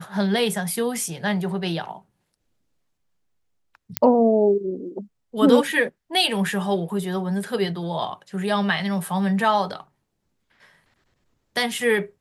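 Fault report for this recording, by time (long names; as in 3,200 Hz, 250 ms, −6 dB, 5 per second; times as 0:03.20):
0:03.97: click −1 dBFS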